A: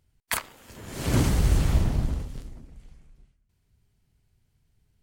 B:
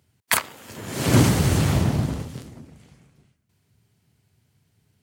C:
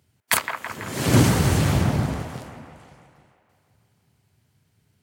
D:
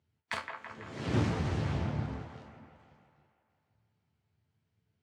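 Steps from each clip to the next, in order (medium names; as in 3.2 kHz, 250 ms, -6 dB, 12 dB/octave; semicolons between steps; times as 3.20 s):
high-pass 94 Hz 24 dB/octave; trim +7.5 dB
feedback echo behind a band-pass 165 ms, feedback 64%, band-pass 1.1 kHz, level -5 dB
distance through air 140 m; chord resonator D2 minor, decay 0.23 s; loudspeaker Doppler distortion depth 0.26 ms; trim -2.5 dB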